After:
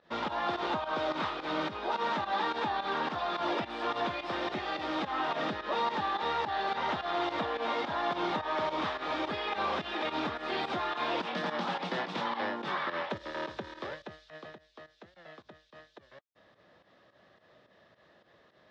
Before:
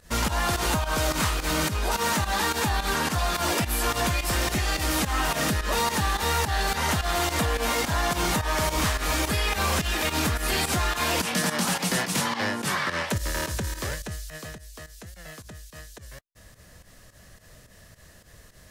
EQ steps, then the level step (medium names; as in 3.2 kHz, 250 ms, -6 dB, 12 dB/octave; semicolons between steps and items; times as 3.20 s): distance through air 350 m; cabinet simulation 240–7700 Hz, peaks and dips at 350 Hz +5 dB, 580 Hz +4 dB, 830 Hz +6 dB, 1.2 kHz +4 dB, 3.6 kHz +9 dB, 5.3 kHz +3 dB; -6.5 dB